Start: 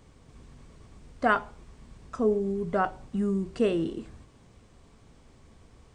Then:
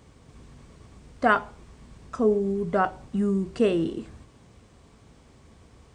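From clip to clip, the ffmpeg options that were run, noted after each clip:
ffmpeg -i in.wav -af "highpass=43,volume=3dB" out.wav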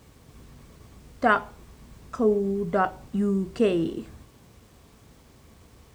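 ffmpeg -i in.wav -af "acrusher=bits=9:mix=0:aa=0.000001" out.wav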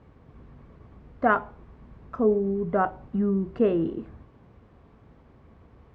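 ffmpeg -i in.wav -af "lowpass=1600" out.wav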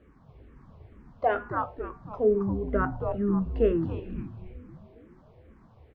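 ffmpeg -i in.wav -filter_complex "[0:a]bandreject=frequency=241.3:width_type=h:width=4,bandreject=frequency=482.6:width_type=h:width=4,bandreject=frequency=723.9:width_type=h:width=4,bandreject=frequency=965.2:width_type=h:width=4,bandreject=frequency=1206.5:width_type=h:width=4,bandreject=frequency=1447.8:width_type=h:width=4,bandreject=frequency=1689.1:width_type=h:width=4,bandreject=frequency=1930.4:width_type=h:width=4,bandreject=frequency=2171.7:width_type=h:width=4,bandreject=frequency=2413:width_type=h:width=4,bandreject=frequency=2654.3:width_type=h:width=4,bandreject=frequency=2895.6:width_type=h:width=4,bandreject=frequency=3136.9:width_type=h:width=4,bandreject=frequency=3378.2:width_type=h:width=4,bandreject=frequency=3619.5:width_type=h:width=4,bandreject=frequency=3860.8:width_type=h:width=4,bandreject=frequency=4102.1:width_type=h:width=4,bandreject=frequency=4343.4:width_type=h:width=4,bandreject=frequency=4584.7:width_type=h:width=4,bandreject=frequency=4826:width_type=h:width=4,bandreject=frequency=5067.3:width_type=h:width=4,bandreject=frequency=5308.6:width_type=h:width=4,bandreject=frequency=5549.9:width_type=h:width=4,bandreject=frequency=5791.2:width_type=h:width=4,bandreject=frequency=6032.5:width_type=h:width=4,bandreject=frequency=6273.8:width_type=h:width=4,bandreject=frequency=6515.1:width_type=h:width=4,bandreject=frequency=6756.4:width_type=h:width=4,bandreject=frequency=6997.7:width_type=h:width=4,bandreject=frequency=7239:width_type=h:width=4,bandreject=frequency=7480.3:width_type=h:width=4,bandreject=frequency=7721.6:width_type=h:width=4,asplit=7[link_01][link_02][link_03][link_04][link_05][link_06][link_07];[link_02]adelay=271,afreqshift=-140,volume=-5dB[link_08];[link_03]adelay=542,afreqshift=-280,volume=-11.7dB[link_09];[link_04]adelay=813,afreqshift=-420,volume=-18.5dB[link_10];[link_05]adelay=1084,afreqshift=-560,volume=-25.2dB[link_11];[link_06]adelay=1355,afreqshift=-700,volume=-32dB[link_12];[link_07]adelay=1626,afreqshift=-840,volume=-38.7dB[link_13];[link_01][link_08][link_09][link_10][link_11][link_12][link_13]amix=inputs=7:normalize=0,asplit=2[link_14][link_15];[link_15]afreqshift=-2.2[link_16];[link_14][link_16]amix=inputs=2:normalize=1" out.wav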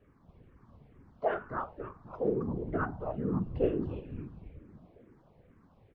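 ffmpeg -i in.wav -af "afftfilt=real='hypot(re,im)*cos(2*PI*random(0))':imag='hypot(re,im)*sin(2*PI*random(1))':win_size=512:overlap=0.75" out.wav

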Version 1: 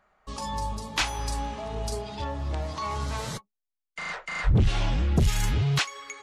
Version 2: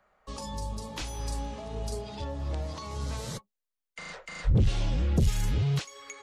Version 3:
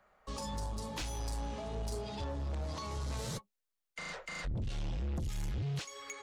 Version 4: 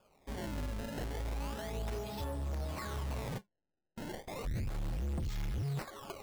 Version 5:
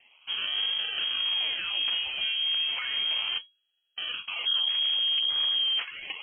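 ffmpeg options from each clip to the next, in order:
ffmpeg -i in.wav -filter_complex "[0:a]acrossover=split=150|440|3500[link_01][link_02][link_03][link_04];[link_03]acompressor=threshold=-41dB:ratio=6[link_05];[link_04]alimiter=level_in=5dB:limit=-24dB:level=0:latency=1:release=100,volume=-5dB[link_06];[link_01][link_02][link_05][link_06]amix=inputs=4:normalize=0,equalizer=frequency=520:width_type=o:width=0.29:gain=7,volume=-2dB" out.wav
ffmpeg -i in.wav -af "acompressor=threshold=-28dB:ratio=6,asoftclip=type=tanh:threshold=-32.5dB" out.wav
ffmpeg -i in.wav -af "acrusher=samples=22:mix=1:aa=0.000001:lfo=1:lforange=35.2:lforate=0.33" out.wav
ffmpeg -i in.wav -af "lowpass=frequency=2800:width_type=q:width=0.5098,lowpass=frequency=2800:width_type=q:width=0.6013,lowpass=frequency=2800:width_type=q:width=0.9,lowpass=frequency=2800:width_type=q:width=2.563,afreqshift=-3300,volume=8.5dB" out.wav

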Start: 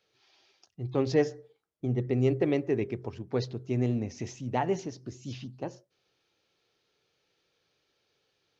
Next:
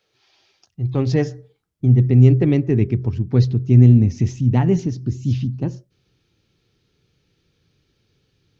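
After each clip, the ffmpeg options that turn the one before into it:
ffmpeg -i in.wav -af "asubboost=boost=10.5:cutoff=200,volume=5dB" out.wav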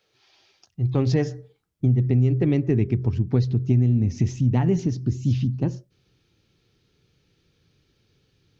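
ffmpeg -i in.wav -af "acompressor=threshold=-16dB:ratio=6" out.wav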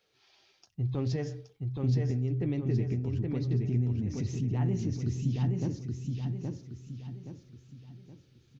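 ffmpeg -i in.wav -af "alimiter=limit=-19.5dB:level=0:latency=1:release=140,flanger=delay=4.2:depth=4.8:regen=-75:speed=0.31:shape=sinusoidal,aecho=1:1:822|1644|2466|3288|4110:0.668|0.267|0.107|0.0428|0.0171" out.wav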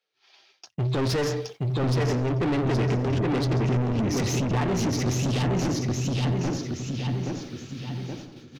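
ffmpeg -i in.wav -filter_complex "[0:a]agate=range=-33dB:threshold=-52dB:ratio=3:detection=peak,asplit=2[link_01][link_02];[link_02]highpass=frequency=720:poles=1,volume=33dB,asoftclip=type=tanh:threshold=-17.5dB[link_03];[link_01][link_03]amix=inputs=2:normalize=0,lowpass=frequency=5000:poles=1,volume=-6dB,asplit=2[link_04][link_05];[link_05]adelay=908,lowpass=frequency=2000:poles=1,volume=-11.5dB,asplit=2[link_06][link_07];[link_07]adelay=908,lowpass=frequency=2000:poles=1,volume=0.38,asplit=2[link_08][link_09];[link_09]adelay=908,lowpass=frequency=2000:poles=1,volume=0.38,asplit=2[link_10][link_11];[link_11]adelay=908,lowpass=frequency=2000:poles=1,volume=0.38[link_12];[link_04][link_06][link_08][link_10][link_12]amix=inputs=5:normalize=0" out.wav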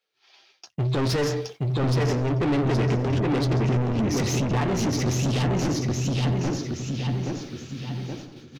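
ffmpeg -i in.wav -filter_complex "[0:a]asplit=2[link_01][link_02];[link_02]adelay=14,volume=-13.5dB[link_03];[link_01][link_03]amix=inputs=2:normalize=0,volume=1dB" out.wav

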